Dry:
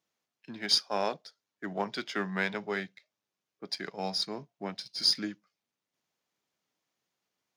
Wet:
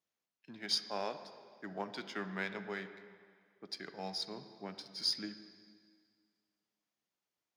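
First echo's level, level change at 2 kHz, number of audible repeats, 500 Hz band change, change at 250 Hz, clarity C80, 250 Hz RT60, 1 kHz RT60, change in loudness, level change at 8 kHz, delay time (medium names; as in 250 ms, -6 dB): no echo, -7.5 dB, no echo, -7.5 dB, -7.5 dB, 11.5 dB, 1.9 s, 2.0 s, -8.0 dB, -8.0 dB, no echo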